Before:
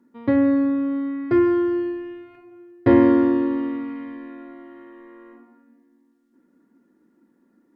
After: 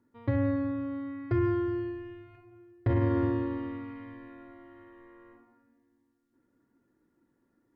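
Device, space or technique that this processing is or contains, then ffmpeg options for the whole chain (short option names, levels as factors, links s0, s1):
car stereo with a boomy subwoofer: -af "lowshelf=f=150:t=q:w=3:g=11,alimiter=limit=0.282:level=0:latency=1:release=54,volume=0.447"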